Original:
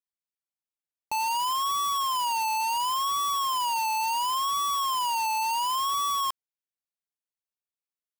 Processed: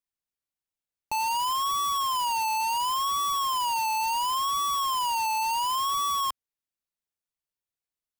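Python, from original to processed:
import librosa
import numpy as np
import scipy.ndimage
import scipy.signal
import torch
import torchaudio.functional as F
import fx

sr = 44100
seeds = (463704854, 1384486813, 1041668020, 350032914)

y = fx.low_shelf(x, sr, hz=130.0, db=9.0)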